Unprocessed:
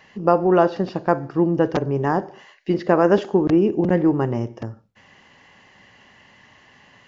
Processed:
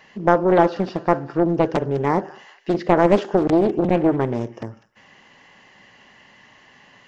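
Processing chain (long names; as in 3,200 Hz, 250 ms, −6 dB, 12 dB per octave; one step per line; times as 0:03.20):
parametric band 80 Hz −8 dB 1.1 octaves
delay with a high-pass on its return 200 ms, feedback 42%, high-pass 1,900 Hz, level −13.5 dB
highs frequency-modulated by the lows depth 0.57 ms
level +1 dB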